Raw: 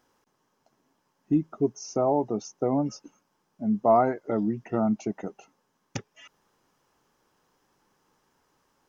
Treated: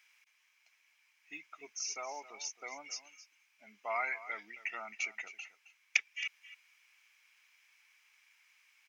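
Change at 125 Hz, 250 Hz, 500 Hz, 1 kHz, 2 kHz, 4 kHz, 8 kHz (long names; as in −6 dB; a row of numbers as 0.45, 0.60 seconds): below −40 dB, −36.0 dB, −22.0 dB, −14.5 dB, +10.0 dB, +5.0 dB, can't be measured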